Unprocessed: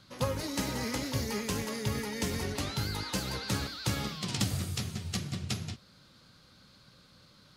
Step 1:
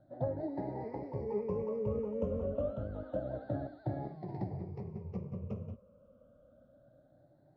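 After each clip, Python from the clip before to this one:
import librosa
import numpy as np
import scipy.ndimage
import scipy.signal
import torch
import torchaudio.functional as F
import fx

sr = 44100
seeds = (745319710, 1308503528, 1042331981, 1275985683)

y = fx.spec_ripple(x, sr, per_octave=0.81, drift_hz=0.28, depth_db=17)
y = fx.lowpass_res(y, sr, hz=600.0, q=4.9)
y = F.gain(torch.from_numpy(y), -8.5).numpy()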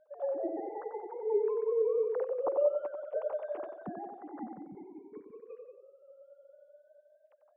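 y = fx.sine_speech(x, sr)
y = fx.echo_banded(y, sr, ms=91, feedback_pct=53, hz=590.0, wet_db=-5)
y = F.gain(torch.from_numpy(y), 2.0).numpy()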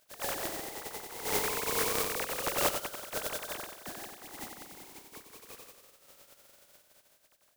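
y = fx.spec_flatten(x, sr, power=0.2)
y = F.gain(torch.from_numpy(y), -1.5).numpy()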